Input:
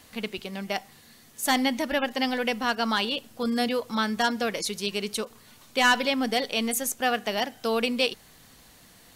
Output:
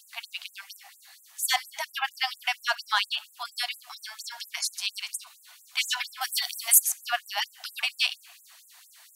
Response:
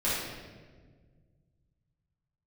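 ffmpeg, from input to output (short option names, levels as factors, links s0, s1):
-filter_complex "[0:a]asettb=1/sr,asplit=3[s0][s1][s2];[s0]atrim=end=6.214[s3];[s1]atrim=start=6.21:end=6.8,asetpts=PTS-STARTPTS,afade=t=in:d=0.004:c=qsin,afade=t=out:st=0.586:d=0.004:c=qsin,aemphasis=mode=production:type=50kf[s4];[s2]atrim=start=6.796[s5];[s3][s4]acrossfade=d=0.004:c1=hsin:c2=qsin[s6];[s6][s5]acrossfade=d=0.004:c1=qsin:c2=hsin,acontrast=29,asplit=2[s7][s8];[1:a]atrim=start_sample=2205[s9];[s8][s9]afir=irnorm=-1:irlink=0,volume=0.0376[s10];[s7][s10]amix=inputs=2:normalize=0,afftfilt=real='re*gte(b*sr/1024,610*pow(7200/610,0.5+0.5*sin(2*PI*4.3*pts/sr)))':imag='im*gte(b*sr/1024,610*pow(7200/610,0.5+0.5*sin(2*PI*4.3*pts/sr)))':win_size=1024:overlap=0.75,volume=0.708"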